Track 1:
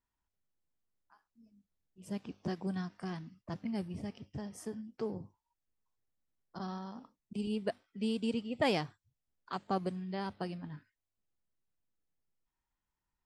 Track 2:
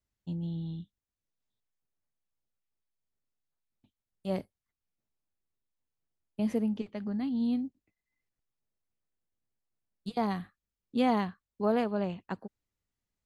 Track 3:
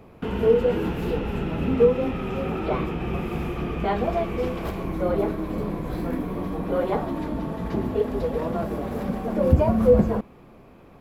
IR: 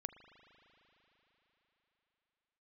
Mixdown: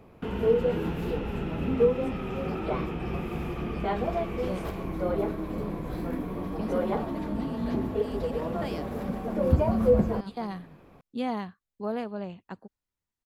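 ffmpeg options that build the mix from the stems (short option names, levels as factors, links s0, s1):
-filter_complex "[0:a]volume=0.398[s0];[1:a]adelay=200,volume=0.631[s1];[2:a]volume=0.596[s2];[s0][s1][s2]amix=inputs=3:normalize=0"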